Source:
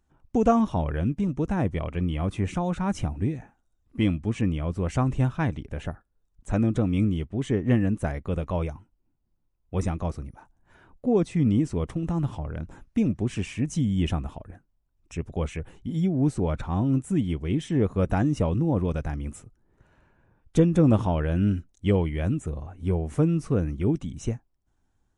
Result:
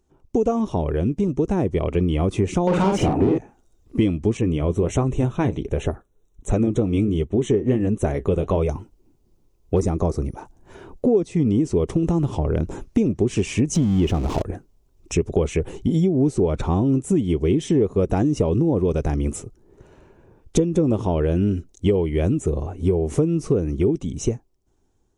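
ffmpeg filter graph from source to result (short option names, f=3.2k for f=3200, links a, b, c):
-filter_complex "[0:a]asettb=1/sr,asplit=3[a][b][c];[a]atrim=end=2.674[d];[b]atrim=start=2.67:end=3.38,asetpts=PTS-STARTPTS,afade=t=in:d=0.004:c=qsin,afade=t=out:st=0.706:d=0.004:c=qsin,equalizer=f=5.1k:t=o:w=1.2:g=-7,asplit=2[e][f];[f]highpass=f=720:p=1,volume=28dB,asoftclip=type=tanh:threshold=-14dB[g];[e][g]amix=inputs=2:normalize=0,lowpass=f=1.1k:p=1,volume=-6dB,asplit=2[h][i];[i]adelay=47,volume=-3dB[j];[h][j]amix=inputs=2:normalize=0,atrim=end_sample=31311[k];[c]atrim=start=3.376[l];[d][k]acrossfade=d=0.004:c1=hsin:c2=qsin[m];[m][l]acrossfade=d=0.004:c1=qsin:c2=hsin,asettb=1/sr,asplit=3[n][o][p];[n]atrim=end=4.374[q];[o]atrim=start=4.37:end=8.69,asetpts=PTS-STARTPTS,afade=t=in:d=0.004:c=qsin,afade=t=out:st=4.316:d=0.004:c=qsin,flanger=delay=1.5:depth=8:regen=-63:speed=1.4:shape=sinusoidal,asuperstop=centerf=4800:order=12:qfactor=3.5[r];[p]atrim=start=8.686[s];[q][r]acrossfade=d=0.004:c1=hsin:c2=qsin[t];[t][s]acrossfade=d=0.004:c1=qsin:c2=hsin,asettb=1/sr,asplit=3[u][v][w];[u]atrim=end=9.764[x];[v]atrim=start=9.76:end=10.22,asetpts=PTS-STARTPTS,afade=t=in:d=0.004:c=qsin,afade=t=out:st=0.456:d=0.004:c=qsin,equalizer=f=2.9k:t=o:w=0.61:g=-11.5,asoftclip=type=hard:threshold=-17.5dB[y];[w]atrim=start=10.216[z];[x][y]acrossfade=d=0.004:c1=hsin:c2=qsin[aa];[aa][z]acrossfade=d=0.004:c1=qsin:c2=hsin,asettb=1/sr,asplit=3[ab][ac][ad];[ab]atrim=end=13.754[ae];[ac]atrim=start=13.75:end=14.42,asetpts=PTS-STARTPTS,afade=t=in:d=0.004:c=qsin,afade=t=out:st=0.666:d=0.004:c=qsin,aeval=exprs='val(0)+0.5*0.0211*sgn(val(0))':c=same,aemphasis=mode=reproduction:type=50kf[af];[ad]atrim=start=14.416[ag];[ae][af]acrossfade=d=0.004:c1=hsin:c2=qsin[ah];[ah][ag]acrossfade=d=0.004:c1=qsin:c2=hsin,dynaudnorm=f=720:g=5:m=12.5dB,equalizer=f=400:t=o:w=0.67:g=11,equalizer=f=1.6k:t=o:w=0.67:g=-6,equalizer=f=6.3k:t=o:w=0.67:g=5,acompressor=threshold=-19dB:ratio=6,volume=2.5dB"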